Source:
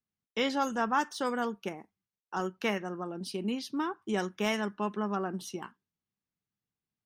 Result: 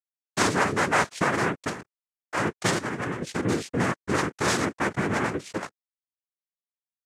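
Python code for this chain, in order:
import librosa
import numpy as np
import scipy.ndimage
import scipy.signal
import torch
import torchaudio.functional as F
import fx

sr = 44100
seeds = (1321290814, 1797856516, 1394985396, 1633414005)

y = fx.freq_compress(x, sr, knee_hz=3400.0, ratio=1.5)
y = fx.leveller(y, sr, passes=2)
y = fx.bass_treble(y, sr, bass_db=-4, treble_db=-6)
y = np.sign(y) * np.maximum(np.abs(y) - 10.0 ** (-48.5 / 20.0), 0.0)
y = fx.noise_vocoder(y, sr, seeds[0], bands=3)
y = F.gain(torch.from_numpy(y), 2.5).numpy()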